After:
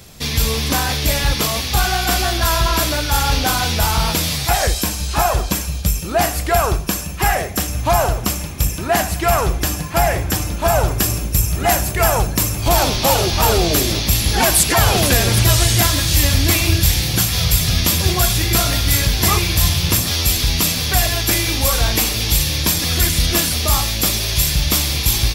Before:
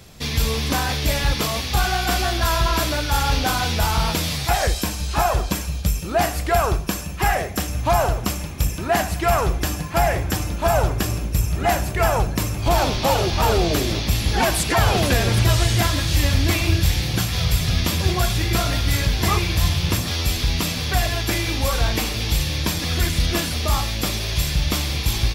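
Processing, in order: high shelf 5900 Hz +6.5 dB, from 10.88 s +12 dB; gain +2.5 dB

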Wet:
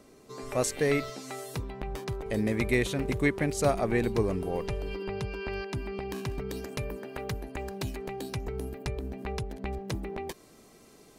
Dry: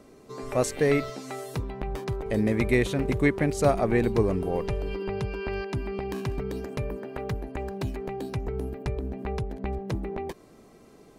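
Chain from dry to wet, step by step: high shelf 2300 Hz +6 dB, from 6.49 s +11 dB; gain -4 dB

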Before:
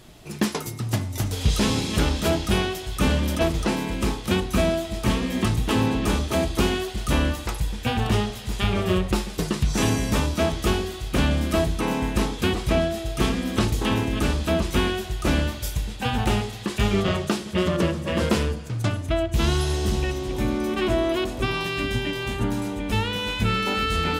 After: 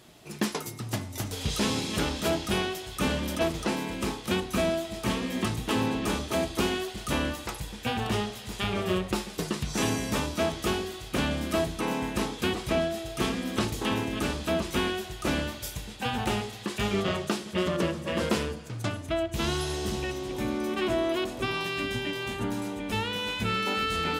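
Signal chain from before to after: HPF 180 Hz 6 dB/oct; gain -3.5 dB

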